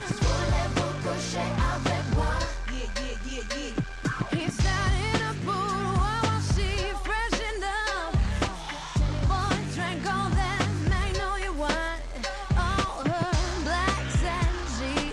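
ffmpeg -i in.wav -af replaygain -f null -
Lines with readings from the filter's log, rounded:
track_gain = +10.7 dB
track_peak = 0.165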